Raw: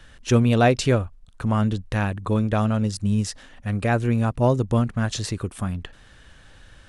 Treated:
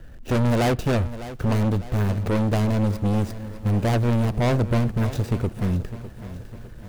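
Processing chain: median filter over 41 samples; treble shelf 7.4 kHz +5.5 dB; overload inside the chain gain 26 dB; on a send at -21.5 dB: reverberation RT60 0.85 s, pre-delay 3 ms; on the sum: bit-crushed delay 604 ms, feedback 55%, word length 9-bit, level -14 dB; trim +7.5 dB

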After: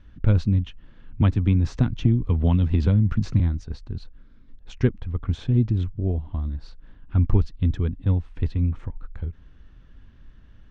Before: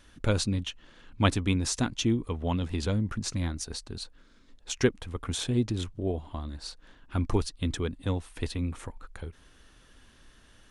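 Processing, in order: low-pass 6.6 kHz 24 dB/octave; tone controls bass +15 dB, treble -14 dB; 1.21–3.40 s: three bands compressed up and down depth 100%; trim -4 dB

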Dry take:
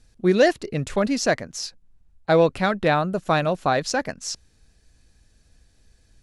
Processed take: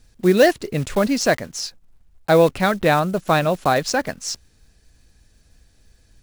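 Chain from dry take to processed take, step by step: block-companded coder 5-bit; trim +3 dB

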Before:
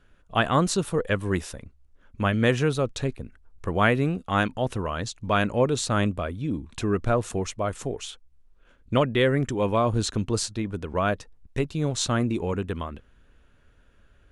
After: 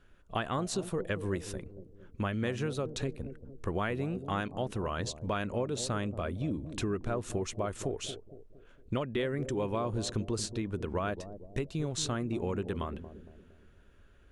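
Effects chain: peaking EQ 370 Hz +4.5 dB 0.21 oct; compression, threshold -27 dBFS, peak gain reduction 11.5 dB; on a send: bucket-brigade echo 230 ms, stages 1024, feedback 45%, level -10.5 dB; on the sum: trim -2.5 dB

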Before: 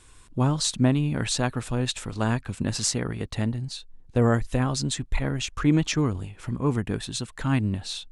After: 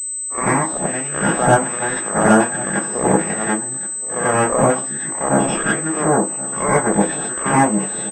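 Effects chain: reverse spectral sustain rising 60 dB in 0.45 s; gate -33 dBFS, range -56 dB; 4.71–6.66 s: treble shelf 2.8 kHz -11 dB; compression 6:1, threshold -22 dBFS, peak gain reduction 8 dB; LFO band-pass saw down 1.3 Hz 610–2900 Hz; Chebyshev shaper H 6 -7 dB, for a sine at -19.5 dBFS; delay 1074 ms -16.5 dB; reverberation RT60 0.30 s, pre-delay 84 ms, DRR -7.5 dB; class-D stage that switches slowly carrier 8.1 kHz; trim -2 dB

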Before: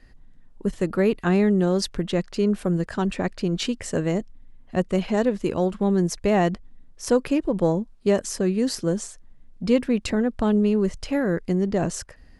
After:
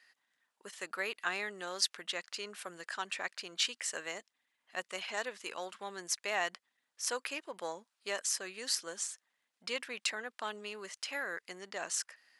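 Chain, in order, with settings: high-pass 1.4 kHz 12 dB/octave; trim -1.5 dB

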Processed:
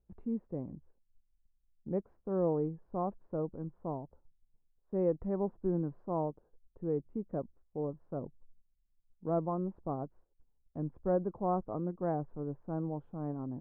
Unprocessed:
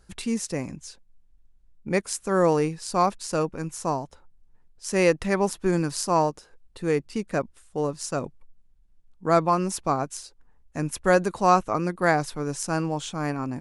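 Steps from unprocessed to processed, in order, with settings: Bessel low-pass 580 Hz, order 4; gate -50 dBFS, range -9 dB; trim -8 dB

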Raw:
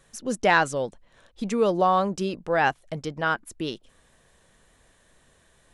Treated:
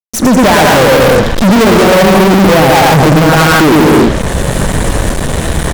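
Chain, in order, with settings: coarse spectral quantiser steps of 15 dB; bouncing-ball echo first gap 110 ms, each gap 0.75×, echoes 5; compression 4:1, threshold -34 dBFS, peak gain reduction 16.5 dB; reverberation, pre-delay 3 ms, DRR 17 dB; level rider gain up to 16.5 dB; tilt shelf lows +7.5 dB, about 790 Hz; low-pass that closes with the level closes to 540 Hz, closed at -12.5 dBFS; fuzz box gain 35 dB, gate -43 dBFS; treble shelf 9.2 kHz +7 dB; loudness maximiser +10.5 dB; trim -1 dB

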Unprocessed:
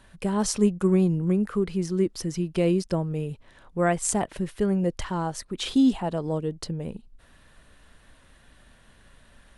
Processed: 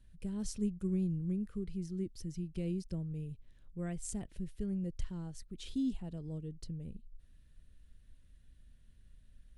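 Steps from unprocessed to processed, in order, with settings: amplifier tone stack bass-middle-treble 10-0-1; trim +4 dB

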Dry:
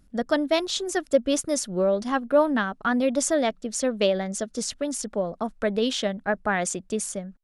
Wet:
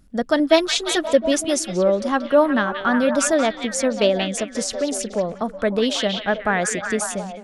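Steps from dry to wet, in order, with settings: 0.39–1.08 s: comb 6.3 ms, depth 68%; repeats whose band climbs or falls 181 ms, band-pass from 2.9 kHz, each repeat -0.7 oct, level -1.5 dB; trim +4 dB

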